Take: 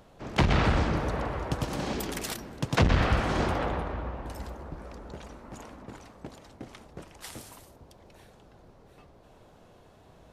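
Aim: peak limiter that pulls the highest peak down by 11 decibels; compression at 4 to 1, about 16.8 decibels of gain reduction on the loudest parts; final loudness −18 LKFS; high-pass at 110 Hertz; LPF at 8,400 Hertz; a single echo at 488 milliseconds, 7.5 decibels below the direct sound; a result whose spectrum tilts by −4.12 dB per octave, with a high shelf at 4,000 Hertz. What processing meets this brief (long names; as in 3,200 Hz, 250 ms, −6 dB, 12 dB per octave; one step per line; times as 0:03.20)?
high-pass filter 110 Hz
low-pass filter 8,400 Hz
high-shelf EQ 4,000 Hz +8.5 dB
downward compressor 4 to 1, threshold −39 dBFS
brickwall limiter −35 dBFS
single-tap delay 488 ms −7.5 dB
level +27.5 dB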